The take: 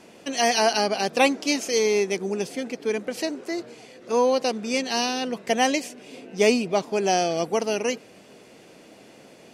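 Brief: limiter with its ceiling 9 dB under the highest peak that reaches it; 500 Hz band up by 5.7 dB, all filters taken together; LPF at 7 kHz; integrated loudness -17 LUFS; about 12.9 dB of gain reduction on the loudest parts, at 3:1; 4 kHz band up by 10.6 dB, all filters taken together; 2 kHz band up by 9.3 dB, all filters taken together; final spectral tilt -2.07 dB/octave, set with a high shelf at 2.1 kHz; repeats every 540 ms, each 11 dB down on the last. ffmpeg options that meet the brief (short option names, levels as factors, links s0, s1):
-af "lowpass=7000,equalizer=f=500:t=o:g=6,equalizer=f=2000:t=o:g=4.5,highshelf=f=2100:g=8.5,equalizer=f=4000:t=o:g=4.5,acompressor=threshold=0.0562:ratio=3,alimiter=limit=0.112:level=0:latency=1,aecho=1:1:540|1080|1620:0.282|0.0789|0.0221,volume=4.47"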